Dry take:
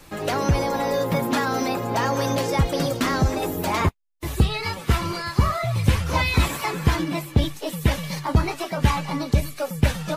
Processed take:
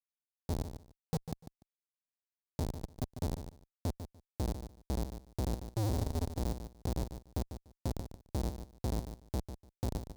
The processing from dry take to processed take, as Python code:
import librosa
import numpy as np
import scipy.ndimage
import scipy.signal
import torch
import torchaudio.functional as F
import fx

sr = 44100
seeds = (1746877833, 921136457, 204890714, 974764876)

p1 = fx.fixed_phaser(x, sr, hz=1600.0, stages=4)
p2 = fx.spec_topn(p1, sr, count=1)
p3 = fx.low_shelf(p2, sr, hz=130.0, db=7.0)
p4 = fx.hum_notches(p3, sr, base_hz=60, count=3)
p5 = fx.rev_freeverb(p4, sr, rt60_s=0.69, hf_ratio=0.45, predelay_ms=10, drr_db=7.5)
p6 = fx.schmitt(p5, sr, flips_db=-25.0)
p7 = fx.highpass(p6, sr, hz=70.0, slope=6)
p8 = fx.band_shelf(p7, sr, hz=1900.0, db=-11.5, octaves=1.7)
p9 = p8 + fx.echo_feedback(p8, sr, ms=147, feedback_pct=17, wet_db=-10.0, dry=0)
y = F.gain(torch.from_numpy(p9), -2.0).numpy()